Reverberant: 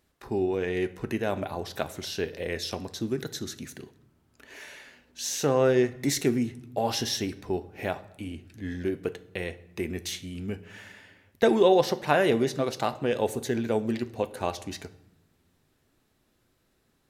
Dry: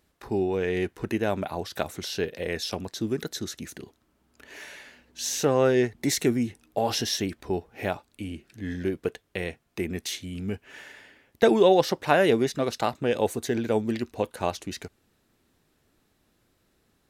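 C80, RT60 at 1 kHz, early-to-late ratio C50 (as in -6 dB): 19.0 dB, 0.85 s, 16.5 dB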